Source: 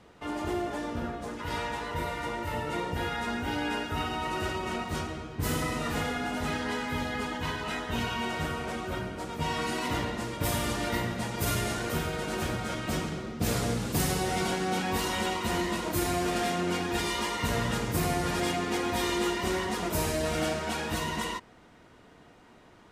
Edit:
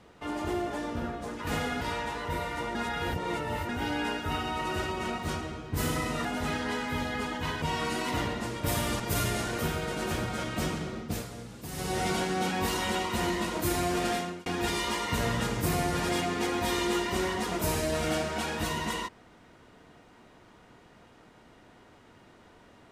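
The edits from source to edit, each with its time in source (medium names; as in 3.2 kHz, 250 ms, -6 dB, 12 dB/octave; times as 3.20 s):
2.41–3.35 s: reverse
5.91–6.25 s: move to 1.47 s
7.62–9.39 s: delete
10.77–11.31 s: delete
13.30–14.29 s: dip -13 dB, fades 0.27 s
16.42–16.77 s: fade out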